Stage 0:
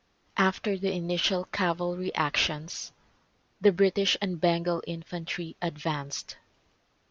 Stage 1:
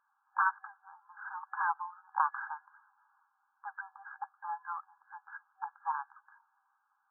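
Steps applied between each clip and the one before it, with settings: FFT band-pass 770–1700 Hz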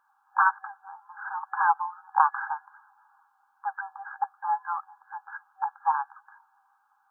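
peaking EQ 800 Hz +7.5 dB 0.28 oct; trim +6.5 dB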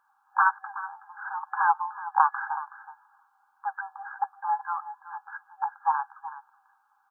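delay 373 ms -14.5 dB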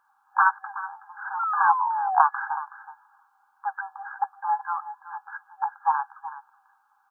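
painted sound fall, 1.39–2.22 s, 700–1400 Hz -28 dBFS; trim +2 dB

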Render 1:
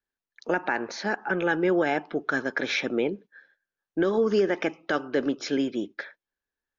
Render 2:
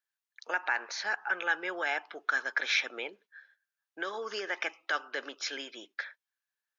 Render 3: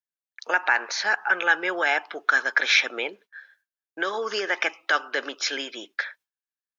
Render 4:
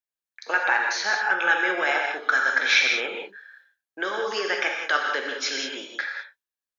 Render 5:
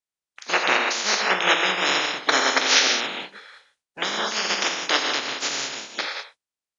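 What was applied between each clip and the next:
high-pass 1.1 kHz 12 dB/octave
gate with hold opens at -58 dBFS; trim +9 dB
gated-style reverb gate 220 ms flat, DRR 0.5 dB; trim -2 dB
spectral peaks clipped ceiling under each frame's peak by 27 dB; resampled via 22.05 kHz; trim +2 dB

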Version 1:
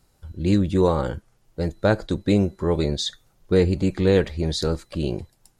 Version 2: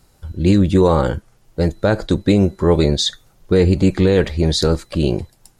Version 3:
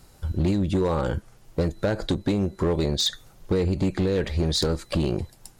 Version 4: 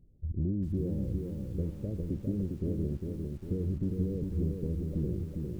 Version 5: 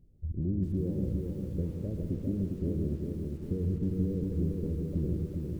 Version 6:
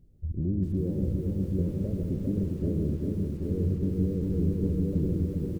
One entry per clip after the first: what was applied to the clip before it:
peak limiter -12 dBFS, peak gain reduction 6 dB; trim +8 dB
compression 20:1, threshold -20 dBFS, peak gain reduction 12.5 dB; hard clipper -19 dBFS, distortion -15 dB; trim +2 dB
Gaussian low-pass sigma 23 samples; bit-crushed delay 403 ms, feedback 55%, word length 9-bit, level -4 dB; trim -6.5 dB
reverberation RT60 0.90 s, pre-delay 119 ms, DRR 7 dB
delay 785 ms -4.5 dB; trim +2.5 dB

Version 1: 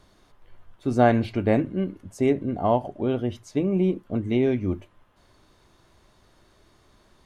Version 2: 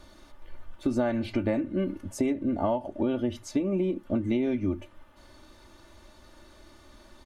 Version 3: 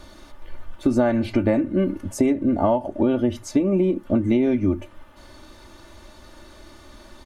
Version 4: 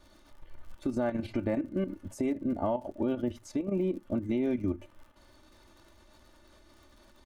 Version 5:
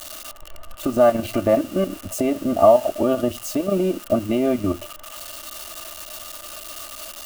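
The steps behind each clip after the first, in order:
comb 3.4 ms, depth 69%; compression 10:1, threshold -27 dBFS, peak gain reduction 16 dB; trim +3.5 dB
dynamic bell 3.4 kHz, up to -4 dB, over -54 dBFS, Q 1; trim +7.5 dB
crackle 52 per s -37 dBFS; level held to a coarse grid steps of 10 dB; trim -8 dB
zero-crossing glitches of -32.5 dBFS; small resonant body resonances 660/1200/2800 Hz, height 15 dB, ringing for 25 ms; trim +7 dB

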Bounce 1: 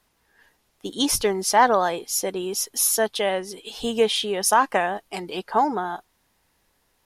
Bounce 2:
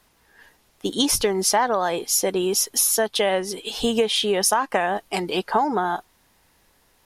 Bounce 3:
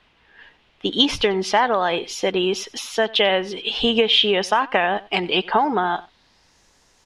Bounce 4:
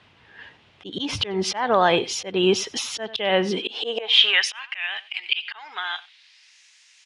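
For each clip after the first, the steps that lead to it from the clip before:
compression 10:1, threshold -23 dBFS, peak gain reduction 12 dB; trim +6.5 dB
low-pass sweep 3 kHz -> 6.5 kHz, 5.89–6.60 s; delay 93 ms -21.5 dB; trim +1.5 dB
slow attack 264 ms; high-pass sweep 98 Hz -> 2.4 kHz, 3.31–4.51 s; resampled via 22.05 kHz; trim +3 dB

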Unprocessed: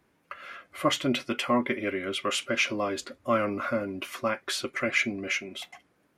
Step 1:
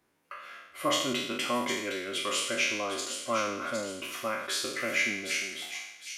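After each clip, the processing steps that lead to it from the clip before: spectral sustain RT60 0.84 s; tone controls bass -5 dB, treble +5 dB; feedback echo behind a high-pass 760 ms, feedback 37%, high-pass 3.4 kHz, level -5 dB; trim -6 dB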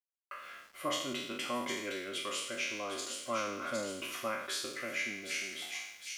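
gain riding within 4 dB 0.5 s; small samples zeroed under -51 dBFS; trim -6 dB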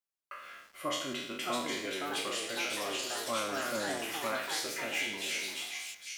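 ever faster or slower copies 754 ms, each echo +3 st, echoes 3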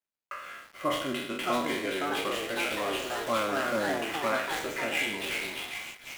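median filter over 9 samples; trim +6.5 dB

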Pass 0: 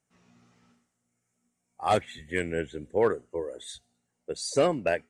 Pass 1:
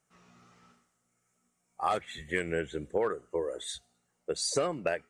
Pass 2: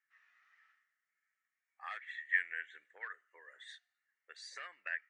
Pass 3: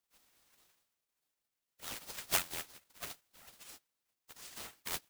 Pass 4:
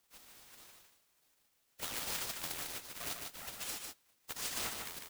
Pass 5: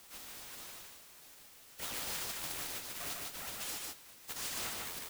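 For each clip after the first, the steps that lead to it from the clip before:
graphic EQ with 31 bands 100 Hz -12 dB, 250 Hz -7 dB, 1.25 kHz +7 dB; compression 6:1, threshold -29 dBFS, peak gain reduction 11.5 dB; trim +3 dB
ladder band-pass 1.9 kHz, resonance 80%; trim +2 dB
formants flattened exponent 0.1; ring modulator with a swept carrier 1.4 kHz, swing 85%, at 4.8 Hz; trim +3 dB
compressor with a negative ratio -48 dBFS, ratio -1; delay 150 ms -4.5 dB; trim +5.5 dB
power-law waveshaper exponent 0.5; trim -7 dB

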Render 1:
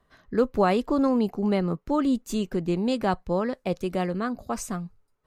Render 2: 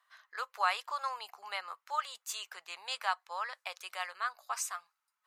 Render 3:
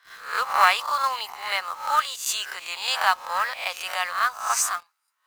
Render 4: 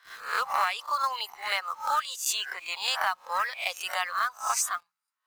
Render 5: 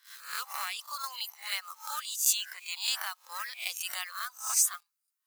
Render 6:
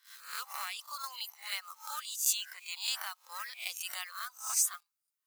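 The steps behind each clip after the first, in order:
inverse Chebyshev high-pass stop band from 290 Hz, stop band 60 dB
reverse spectral sustain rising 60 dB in 0.47 s; bass shelf 250 Hz -10.5 dB; in parallel at -3.5 dB: companded quantiser 4-bit; on the sum: trim +6.5 dB
hum notches 60/120/180 Hz; reverb removal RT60 1.6 s; compression 6:1, threshold -23 dBFS, peak gain reduction 10.5 dB
differentiator; trim +3.5 dB
band-stop 1.7 kHz, Q 27; trim -3.5 dB

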